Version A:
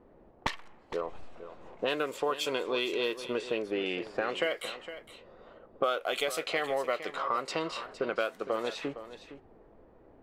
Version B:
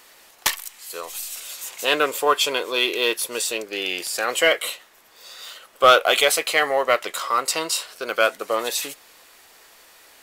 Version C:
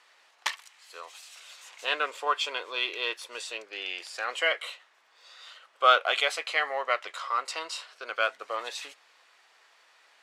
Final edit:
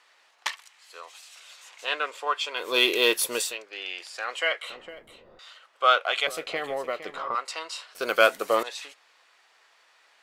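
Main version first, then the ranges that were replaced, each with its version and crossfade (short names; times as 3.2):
C
2.65–3.46 from B, crossfade 0.24 s
4.7–5.39 from A
6.27–7.35 from A
7.95–8.63 from B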